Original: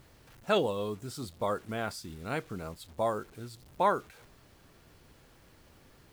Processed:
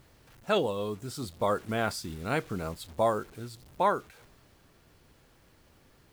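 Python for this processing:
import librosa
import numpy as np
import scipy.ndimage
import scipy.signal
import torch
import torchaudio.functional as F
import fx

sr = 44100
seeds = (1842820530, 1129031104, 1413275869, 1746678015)

y = fx.rider(x, sr, range_db=5, speed_s=2.0)
y = y * 10.0 ** (2.0 / 20.0)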